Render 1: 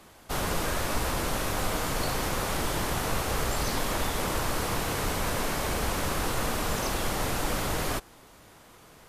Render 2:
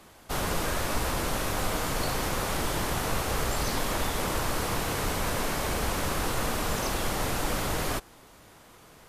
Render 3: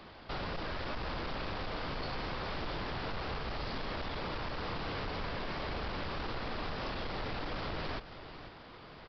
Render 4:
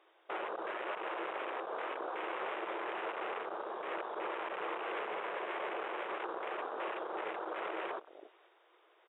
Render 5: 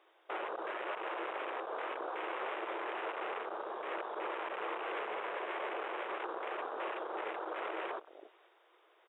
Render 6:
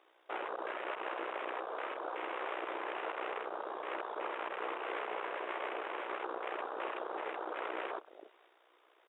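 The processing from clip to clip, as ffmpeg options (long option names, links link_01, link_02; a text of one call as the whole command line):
ffmpeg -i in.wav -af anull out.wav
ffmpeg -i in.wav -af "acompressor=threshold=-34dB:ratio=6,aresample=11025,asoftclip=type=hard:threshold=-36.5dB,aresample=44100,aecho=1:1:495:0.237,volume=2dB" out.wav
ffmpeg -i in.wav -af "afftfilt=real='re*between(b*sr/4096,320,3800)':imag='im*between(b*sr/4096,320,3800)':win_size=4096:overlap=0.75,afwtdn=0.00891,volume=2.5dB" out.wav
ffmpeg -i in.wav -af "highpass=230" out.wav
ffmpeg -i in.wav -af "tremolo=f=61:d=0.621,volume=2.5dB" out.wav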